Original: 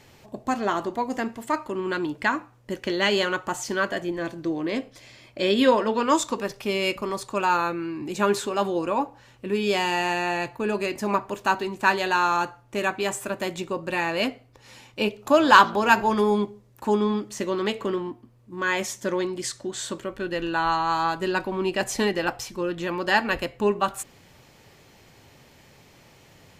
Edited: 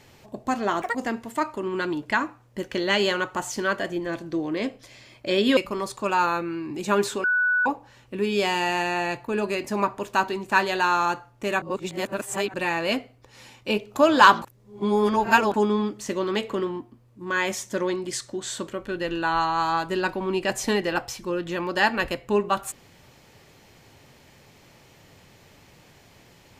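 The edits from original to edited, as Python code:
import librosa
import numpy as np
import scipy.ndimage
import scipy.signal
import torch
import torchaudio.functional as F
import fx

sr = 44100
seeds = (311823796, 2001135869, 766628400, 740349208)

y = fx.edit(x, sr, fx.speed_span(start_s=0.82, length_s=0.25, speed=1.95),
    fx.cut(start_s=5.69, length_s=1.19),
    fx.bleep(start_s=8.55, length_s=0.42, hz=1480.0, db=-18.5),
    fx.reverse_span(start_s=12.93, length_s=0.92),
    fx.reverse_span(start_s=15.73, length_s=1.12), tone=tone)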